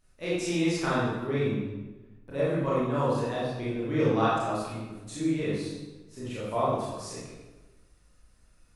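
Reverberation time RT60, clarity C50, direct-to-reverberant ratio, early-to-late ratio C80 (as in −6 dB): 1.2 s, −2.0 dB, −9.5 dB, 1.5 dB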